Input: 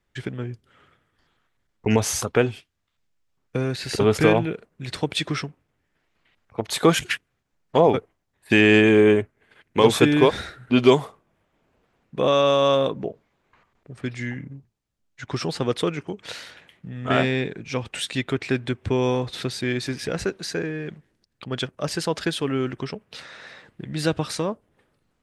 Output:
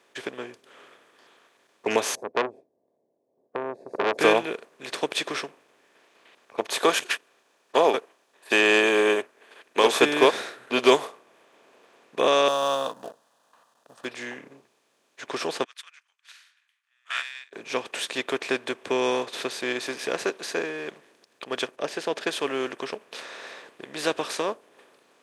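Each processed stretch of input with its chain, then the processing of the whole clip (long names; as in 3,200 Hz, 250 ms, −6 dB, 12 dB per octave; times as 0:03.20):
0:02.15–0:04.19: elliptic low-pass filter 650 Hz, stop band 50 dB + saturating transformer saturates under 1,300 Hz
0:06.80–0:09.94: high-pass filter 380 Hz 6 dB per octave + notch filter 2,100 Hz, Q 14
0:12.48–0:14.05: mu-law and A-law mismatch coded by A + phaser with its sweep stopped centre 930 Hz, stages 4
0:15.64–0:17.53: Butterworth high-pass 1,400 Hz + expander for the loud parts 2.5 to 1, over −48 dBFS
0:21.76–0:22.27: low-pass filter 2,400 Hz 6 dB per octave + parametric band 1,100 Hz −9 dB 0.4 octaves
whole clip: compressor on every frequency bin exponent 0.6; high-pass filter 430 Hz 12 dB per octave; expander for the loud parts 1.5 to 1, over −34 dBFS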